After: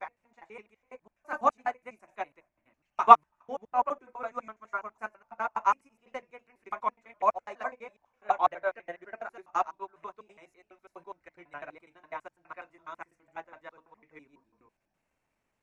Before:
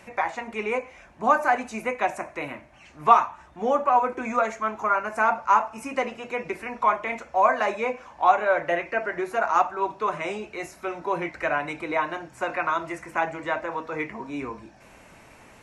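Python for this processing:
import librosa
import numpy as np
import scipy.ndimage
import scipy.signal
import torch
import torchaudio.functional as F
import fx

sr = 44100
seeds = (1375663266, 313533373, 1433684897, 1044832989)

y = fx.block_reorder(x, sr, ms=83.0, group=3)
y = fx.dmg_noise_colour(y, sr, seeds[0], colour='brown', level_db=-61.0)
y = fx.upward_expand(y, sr, threshold_db=-33.0, expansion=2.5)
y = F.gain(torch.from_numpy(y), 3.0).numpy()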